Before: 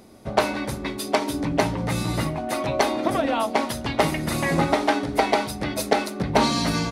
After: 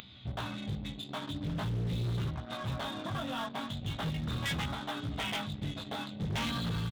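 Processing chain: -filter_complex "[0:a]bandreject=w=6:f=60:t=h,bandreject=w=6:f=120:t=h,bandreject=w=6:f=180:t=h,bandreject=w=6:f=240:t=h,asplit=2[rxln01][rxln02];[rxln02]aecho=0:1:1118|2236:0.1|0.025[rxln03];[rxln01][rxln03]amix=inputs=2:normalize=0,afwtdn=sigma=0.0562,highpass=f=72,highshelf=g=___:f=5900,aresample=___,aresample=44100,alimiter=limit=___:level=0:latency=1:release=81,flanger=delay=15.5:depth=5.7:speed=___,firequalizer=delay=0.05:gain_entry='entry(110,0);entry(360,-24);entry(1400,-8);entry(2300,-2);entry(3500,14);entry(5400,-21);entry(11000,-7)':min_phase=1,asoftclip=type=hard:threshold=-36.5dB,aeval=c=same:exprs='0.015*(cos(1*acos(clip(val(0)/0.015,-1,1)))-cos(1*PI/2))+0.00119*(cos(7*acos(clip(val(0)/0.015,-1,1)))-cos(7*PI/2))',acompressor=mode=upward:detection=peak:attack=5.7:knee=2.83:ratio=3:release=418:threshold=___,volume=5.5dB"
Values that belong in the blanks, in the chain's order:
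-6, 16000, -11.5dB, 0.43, -41dB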